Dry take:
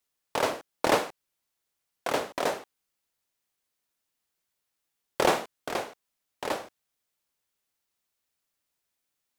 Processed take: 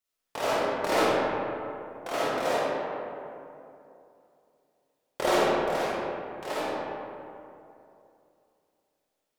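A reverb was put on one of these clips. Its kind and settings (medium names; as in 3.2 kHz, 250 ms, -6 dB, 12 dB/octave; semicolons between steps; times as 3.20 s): algorithmic reverb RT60 2.8 s, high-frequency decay 0.45×, pre-delay 10 ms, DRR -10 dB; trim -8 dB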